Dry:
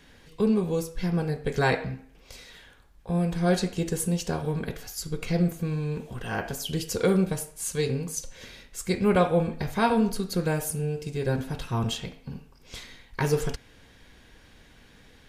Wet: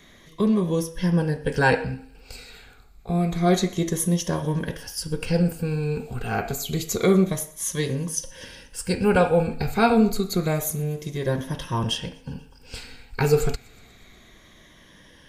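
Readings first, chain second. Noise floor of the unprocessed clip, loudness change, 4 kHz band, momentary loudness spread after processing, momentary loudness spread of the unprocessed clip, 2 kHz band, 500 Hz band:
−55 dBFS, +3.5 dB, +4.0 dB, 18 LU, 18 LU, +4.5 dB, +3.5 dB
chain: rippled gain that drifts along the octave scale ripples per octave 1.2, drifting −0.28 Hz, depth 11 dB
delay with a high-pass on its return 121 ms, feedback 69%, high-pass 4,800 Hz, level −23 dB
level +2.5 dB

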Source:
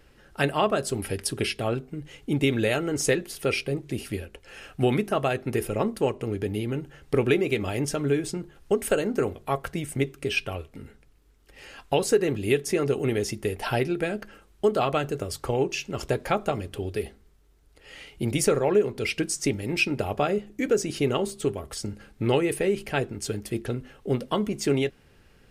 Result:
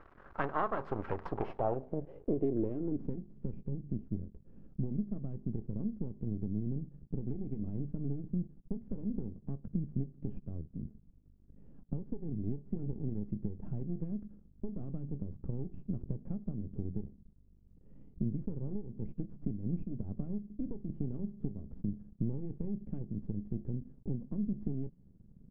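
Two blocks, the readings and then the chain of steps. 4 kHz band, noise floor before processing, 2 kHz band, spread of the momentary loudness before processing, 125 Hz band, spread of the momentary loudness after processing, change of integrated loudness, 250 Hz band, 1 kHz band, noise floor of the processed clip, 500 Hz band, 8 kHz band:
below −35 dB, −58 dBFS, below −20 dB, 11 LU, −6.5 dB, 8 LU, −12.5 dB, −8.0 dB, −13.0 dB, −61 dBFS, −18.0 dB, below −40 dB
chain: running median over 5 samples
downward compressor 6 to 1, threshold −30 dBFS, peak gain reduction 14 dB
surface crackle 570 per second −45 dBFS
half-wave rectification
low-pass filter sweep 1,200 Hz → 200 Hz, 0:01.12–0:03.29
level +1 dB

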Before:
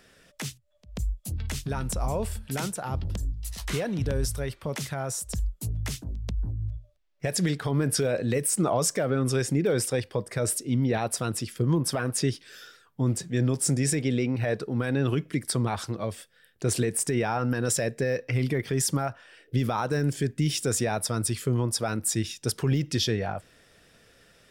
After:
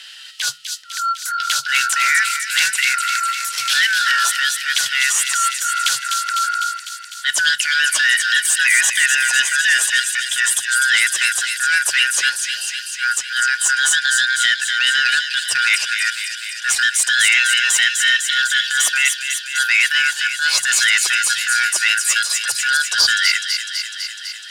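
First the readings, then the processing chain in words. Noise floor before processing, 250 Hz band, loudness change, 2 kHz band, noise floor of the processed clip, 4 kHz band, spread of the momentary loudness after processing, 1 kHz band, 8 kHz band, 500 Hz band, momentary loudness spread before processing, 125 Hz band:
−60 dBFS, below −25 dB, +12.5 dB, +24.5 dB, −33 dBFS, +20.0 dB, 8 LU, +13.0 dB, +14.0 dB, below −20 dB, 9 LU, below −30 dB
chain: band-splitting scrambler in four parts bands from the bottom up 4123
guitar amp tone stack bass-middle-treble 10-0-10
transient designer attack −11 dB, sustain −7 dB
in parallel at +2 dB: speech leveller 2 s
on the sum: soft clipping −19.5 dBFS, distortion −16 dB
on a send: delay with a high-pass on its return 251 ms, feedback 72%, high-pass 3,000 Hz, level −4 dB
on the sum: frequency shifter −150 Hz
meter weighting curve D
level +4.5 dB

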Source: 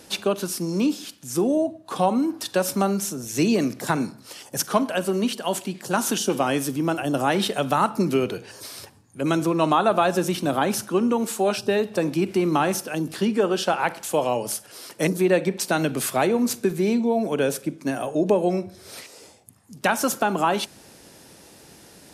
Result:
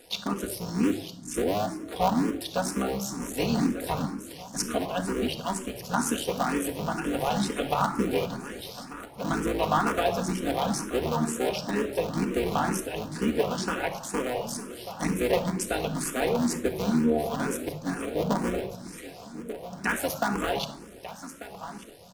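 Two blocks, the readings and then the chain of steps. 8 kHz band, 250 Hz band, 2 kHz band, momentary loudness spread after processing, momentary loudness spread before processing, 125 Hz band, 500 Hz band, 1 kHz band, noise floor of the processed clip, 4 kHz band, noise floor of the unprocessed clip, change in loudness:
−5.0 dB, −5.0 dB, −4.0 dB, 13 LU, 8 LU, −3.5 dB, −6.0 dB, −5.0 dB, −45 dBFS, −4.5 dB, −50 dBFS, −5.5 dB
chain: sub-harmonics by changed cycles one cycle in 3, muted
repeating echo 1,191 ms, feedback 41%, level −13.5 dB
rectangular room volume 2,400 cubic metres, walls furnished, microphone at 1.8 metres
frequency shifter mixed with the dry sound +2.1 Hz
level −2.5 dB

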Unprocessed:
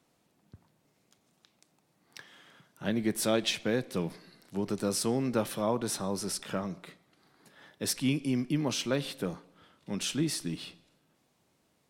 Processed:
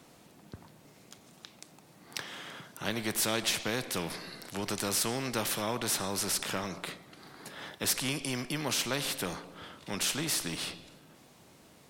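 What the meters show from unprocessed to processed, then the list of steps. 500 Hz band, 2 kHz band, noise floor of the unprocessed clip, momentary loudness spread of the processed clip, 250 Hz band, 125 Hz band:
−4.0 dB, +4.5 dB, −72 dBFS, 19 LU, −6.0 dB, −4.0 dB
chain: every bin compressed towards the loudest bin 2 to 1

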